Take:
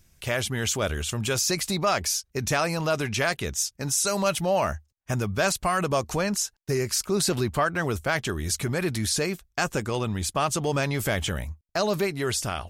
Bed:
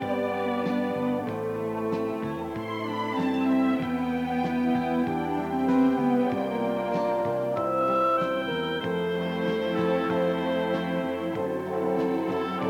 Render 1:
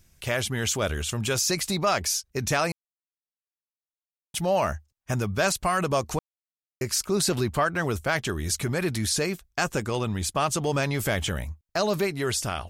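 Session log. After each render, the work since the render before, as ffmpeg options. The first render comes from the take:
-filter_complex "[0:a]asplit=5[a][b][c][d][e];[a]atrim=end=2.72,asetpts=PTS-STARTPTS,afade=t=out:st=2.716:d=0.004:c=hsin[f];[b]atrim=start=2.72:end=4.34,asetpts=PTS-STARTPTS,volume=0[g];[c]atrim=start=4.34:end=6.19,asetpts=PTS-STARTPTS,afade=t=in:d=0.004:c=hsin,afade=t=out:st=1.846:d=0.004:c=hsin[h];[d]atrim=start=6.19:end=6.81,asetpts=PTS-STARTPTS,volume=0[i];[e]atrim=start=6.81,asetpts=PTS-STARTPTS,afade=t=in:d=0.004:c=hsin[j];[f][g][h][i][j]concat=n=5:v=0:a=1"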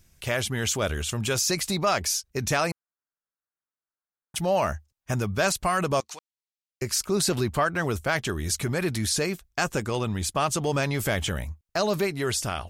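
-filter_complex "[0:a]asettb=1/sr,asplit=3[a][b][c];[a]atrim=end=2.714[d];[b]atrim=start=2.71:end=4.36,asetpts=PTS-STARTPTS,afade=t=in:d=0.004:c=qsin,afade=t=out:st=1.646:d=0.004:c=qsin,highshelf=f=2.2k:t=q:w=3:g=-13.5[e];[c]atrim=start=4.356[f];[d][e]acrossfade=d=0.004:c1=hsin:c2=qsin[g];[g][f]acrossfade=d=0.004:c1=qsin:c2=hsin,asettb=1/sr,asplit=3[h][i][j];[h]atrim=end=6.004[k];[i]atrim=start=6:end=6.82,asetpts=PTS-STARTPTS,afade=t=in:d=0.004:c=qsin,afade=t=out:st=0.816:d=0.004:c=qsin,bandpass=f=4.2k:t=q:w=0.88[l];[j]atrim=start=6.816[m];[k][l]acrossfade=d=0.004:c1=hsin:c2=qsin[n];[n][m]acrossfade=d=0.004:c1=qsin:c2=hsin"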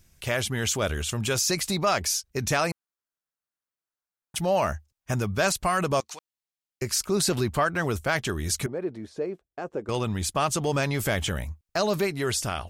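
-filter_complex "[0:a]asettb=1/sr,asplit=3[a][b][c];[a]atrim=end=8.664[d];[b]atrim=start=8.66:end=9.89,asetpts=PTS-STARTPTS,afade=t=in:d=0.004:c=qsin,afade=t=out:st=1.226:d=0.004:c=qsin,bandpass=f=430:t=q:w=1.7[e];[c]atrim=start=9.886[f];[d][e]acrossfade=d=0.004:c1=hsin:c2=qsin[g];[g][f]acrossfade=d=0.004:c1=qsin:c2=hsin"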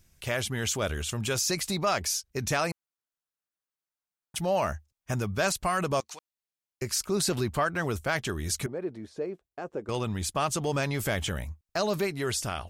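-af "volume=-3dB"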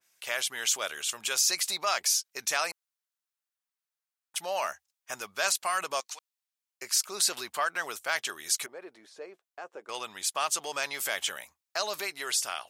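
-af "highpass=800,adynamicequalizer=threshold=0.00794:dfrequency=2600:dqfactor=0.7:tfrequency=2600:tqfactor=0.7:attack=5:release=100:ratio=0.375:range=2:mode=boostabove:tftype=highshelf"

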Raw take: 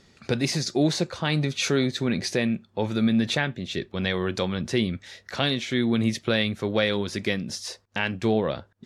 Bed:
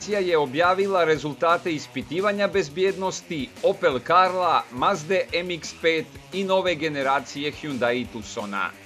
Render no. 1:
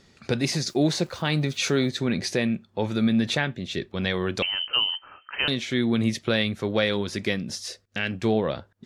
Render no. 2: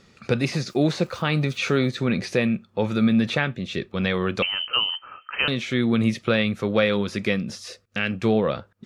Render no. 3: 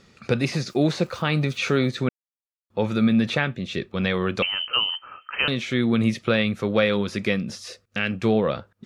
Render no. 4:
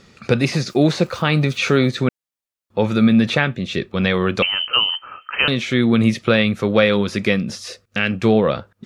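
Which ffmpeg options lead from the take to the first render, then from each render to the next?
-filter_complex "[0:a]asettb=1/sr,asplit=3[a][b][c];[a]atrim=end=0.674[d];[b]atrim=start=0.67:end=1.9,asetpts=PTS-STARTPTS,afade=t=in:d=0.004:c=qsin,afade=t=out:st=1.226:d=0.004:c=qsin,aeval=exprs='val(0)*gte(abs(val(0)),0.00398)':c=same[e];[c]atrim=start=1.896[f];[d][e]acrossfade=d=0.004:c1=hsin:c2=qsin[g];[g][f]acrossfade=d=0.004:c1=qsin:c2=hsin,asettb=1/sr,asplit=3[h][i][j];[h]atrim=end=4.424[k];[i]atrim=start=4.42:end=5.48,asetpts=PTS-STARTPTS,afade=t=in:d=0.004:c=qsin,afade=t=out:st=1.056:d=0.004:c=qsin,lowpass=f=2.7k:t=q:w=0.5098,lowpass=f=2.7k:t=q:w=0.6013,lowpass=f=2.7k:t=q:w=0.9,lowpass=f=2.7k:t=q:w=2.563,afreqshift=-3200[l];[j]atrim=start=5.476[m];[k][l]acrossfade=d=0.004:c1=hsin:c2=qsin[n];[n][m]acrossfade=d=0.004:c1=qsin:c2=hsin,asettb=1/sr,asplit=3[o][p][q];[o]atrim=end=7.664[r];[p]atrim=start=7.66:end=8.11,asetpts=PTS-STARTPTS,afade=t=in:d=0.004:c=qsin,afade=t=out:st=0.446:d=0.004:c=qsin,equalizer=f=930:w=3:g=-15[s];[q]atrim=start=8.106[t];[r][s]acrossfade=d=0.004:c1=hsin:c2=qsin[u];[u][t]acrossfade=d=0.004:c1=qsin:c2=hsin"
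-filter_complex "[0:a]acrossover=split=3600[a][b];[b]acompressor=threshold=-37dB:ratio=4:attack=1:release=60[c];[a][c]amix=inputs=2:normalize=0,equalizer=f=125:t=o:w=0.33:g=4,equalizer=f=200:t=o:w=0.33:g=5,equalizer=f=500:t=o:w=0.33:g=5,equalizer=f=1.25k:t=o:w=0.33:g=8,equalizer=f=2.5k:t=o:w=0.33:g=5"
-filter_complex "[0:a]asplit=3[a][b][c];[a]atrim=end=2.09,asetpts=PTS-STARTPTS,afade=t=out:st=2.086:d=0.004:c=hsin[d];[b]atrim=start=2.09:end=2.7,asetpts=PTS-STARTPTS,volume=0[e];[c]atrim=start=2.7,asetpts=PTS-STARTPTS,afade=t=in:d=0.004:c=hsin[f];[d][e][f]concat=n=3:v=0:a=1"
-af "volume=5.5dB"

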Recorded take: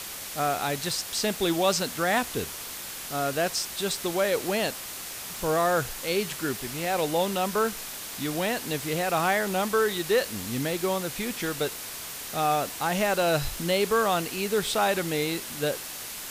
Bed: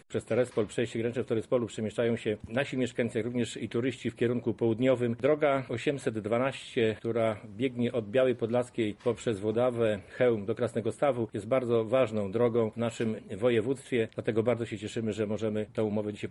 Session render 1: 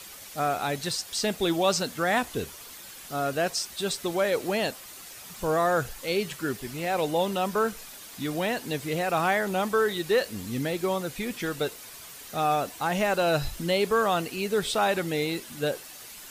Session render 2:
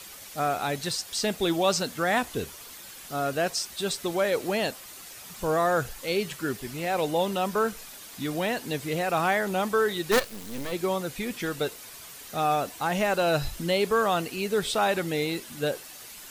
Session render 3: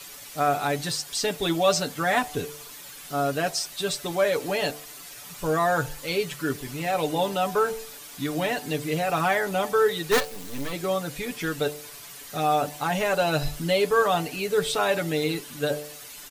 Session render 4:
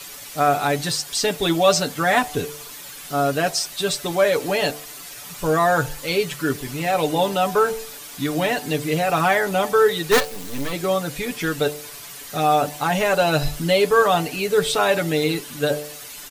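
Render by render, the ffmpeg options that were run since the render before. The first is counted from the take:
-af "afftdn=nr=9:nf=-38"
-filter_complex "[0:a]asplit=3[a][b][c];[a]afade=t=out:st=10.11:d=0.02[d];[b]acrusher=bits=4:dc=4:mix=0:aa=0.000001,afade=t=in:st=10.11:d=0.02,afade=t=out:st=10.71:d=0.02[e];[c]afade=t=in:st=10.71:d=0.02[f];[d][e][f]amix=inputs=3:normalize=0"
-af "aecho=1:1:6.9:0.69,bandreject=f=74.27:t=h:w=4,bandreject=f=148.54:t=h:w=4,bandreject=f=222.81:t=h:w=4,bandreject=f=297.08:t=h:w=4,bandreject=f=371.35:t=h:w=4,bandreject=f=445.62:t=h:w=4,bandreject=f=519.89:t=h:w=4,bandreject=f=594.16:t=h:w=4,bandreject=f=668.43:t=h:w=4,bandreject=f=742.7:t=h:w=4,bandreject=f=816.97:t=h:w=4,bandreject=f=891.24:t=h:w=4"
-af "volume=5dB"

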